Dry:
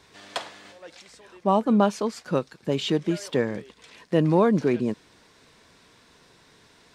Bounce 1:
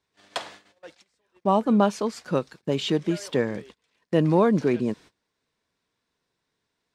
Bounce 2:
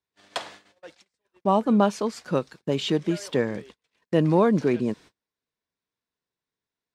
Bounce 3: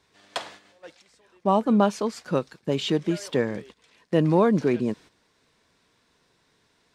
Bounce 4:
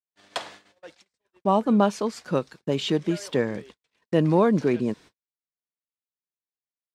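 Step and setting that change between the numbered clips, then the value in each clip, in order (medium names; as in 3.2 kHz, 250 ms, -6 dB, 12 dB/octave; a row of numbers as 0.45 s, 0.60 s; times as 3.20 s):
gate, range: -23 dB, -35 dB, -10 dB, -54 dB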